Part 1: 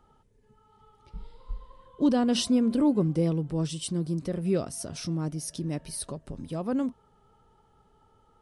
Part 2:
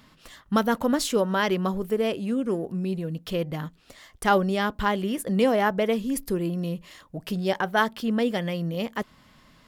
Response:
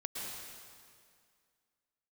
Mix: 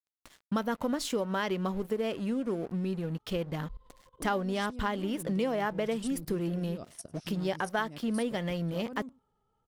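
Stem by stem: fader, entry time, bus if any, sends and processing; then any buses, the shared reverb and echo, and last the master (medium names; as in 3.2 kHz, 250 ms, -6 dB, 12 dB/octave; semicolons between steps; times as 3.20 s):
-4.5 dB, 2.20 s, no send, echo send -23.5 dB, level held to a coarse grid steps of 18 dB
-0.5 dB, 0.00 s, no send, no echo send, treble shelf 9.3 kHz -5.5 dB; crossover distortion -45 dBFS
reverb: none
echo: delay 99 ms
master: compression 3:1, threshold -29 dBFS, peak gain reduction 10 dB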